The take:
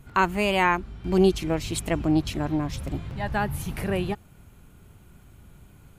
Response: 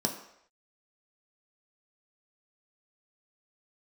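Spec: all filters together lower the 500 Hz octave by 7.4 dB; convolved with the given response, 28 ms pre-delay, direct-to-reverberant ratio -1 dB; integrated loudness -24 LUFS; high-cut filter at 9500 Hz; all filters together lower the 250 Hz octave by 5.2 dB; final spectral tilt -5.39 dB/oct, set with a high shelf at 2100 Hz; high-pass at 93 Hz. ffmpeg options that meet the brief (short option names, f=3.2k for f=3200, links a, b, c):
-filter_complex "[0:a]highpass=93,lowpass=9.5k,equalizer=f=250:t=o:g=-4.5,equalizer=f=500:t=o:g=-8.5,highshelf=f=2.1k:g=-7,asplit=2[a][b];[1:a]atrim=start_sample=2205,adelay=28[c];[b][c]afir=irnorm=-1:irlink=0,volume=-5.5dB[d];[a][d]amix=inputs=2:normalize=0,volume=-1dB"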